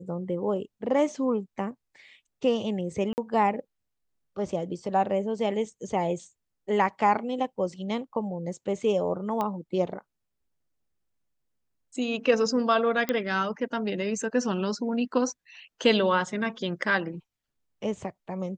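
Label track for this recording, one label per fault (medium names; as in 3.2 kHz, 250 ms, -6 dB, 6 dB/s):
3.130000	3.180000	dropout 49 ms
9.410000	9.410000	pop -16 dBFS
13.090000	13.090000	pop -12 dBFS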